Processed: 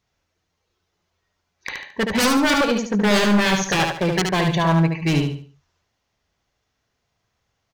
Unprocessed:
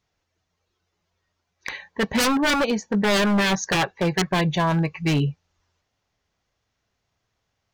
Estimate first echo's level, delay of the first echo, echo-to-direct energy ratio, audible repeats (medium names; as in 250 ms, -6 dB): -4.5 dB, 73 ms, -4.0 dB, 4